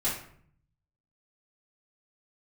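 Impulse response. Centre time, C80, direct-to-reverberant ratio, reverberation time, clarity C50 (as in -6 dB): 37 ms, 9.5 dB, -10.0 dB, 0.60 s, 5.0 dB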